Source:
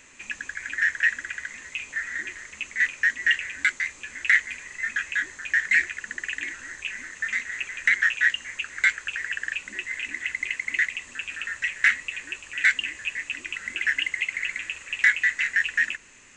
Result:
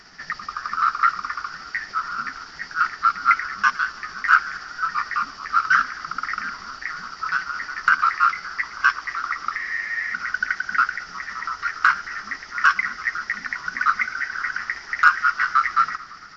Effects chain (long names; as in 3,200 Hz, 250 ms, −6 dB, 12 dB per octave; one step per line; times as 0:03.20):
pitch shift by two crossfaded delay taps −5.5 semitones
frozen spectrum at 0:09.59, 0.55 s
feedback echo with a swinging delay time 111 ms, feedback 75%, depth 110 cents, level −21 dB
level +5 dB